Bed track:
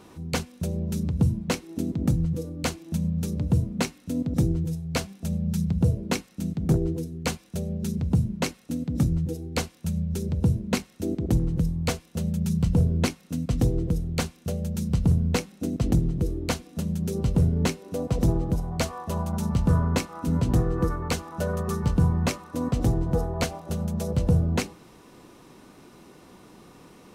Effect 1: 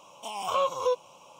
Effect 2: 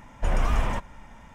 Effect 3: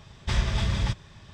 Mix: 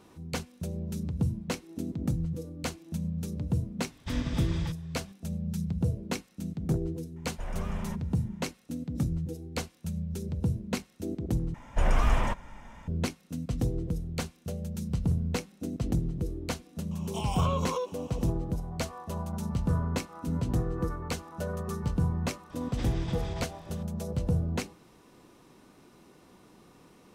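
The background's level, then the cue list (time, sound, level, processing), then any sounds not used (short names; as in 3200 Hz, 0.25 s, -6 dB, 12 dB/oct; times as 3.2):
bed track -6.5 dB
3.79 add 3 -9 dB
7.16 add 2 -12.5 dB
11.54 replace with 2 -0.5 dB
16.91 add 1 -0.5 dB + compressor, threshold -27 dBFS
22.5 add 3 -3.5 dB + compressor 2.5:1, threshold -35 dBFS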